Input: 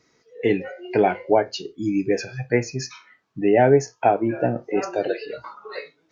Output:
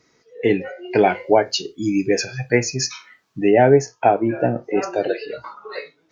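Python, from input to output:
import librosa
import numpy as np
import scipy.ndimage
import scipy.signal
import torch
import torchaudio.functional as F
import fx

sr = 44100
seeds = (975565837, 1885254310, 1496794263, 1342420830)

y = fx.high_shelf(x, sr, hz=3300.0, db=10.5, at=(0.95, 3.51))
y = y * librosa.db_to_amplitude(2.5)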